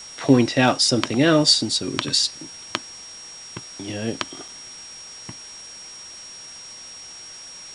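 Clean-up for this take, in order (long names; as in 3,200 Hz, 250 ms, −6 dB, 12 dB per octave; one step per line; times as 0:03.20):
clipped peaks rebuilt −4 dBFS
notch filter 5,600 Hz, Q 30
repair the gap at 0:04.48, 3.8 ms
noise reduction from a noise print 26 dB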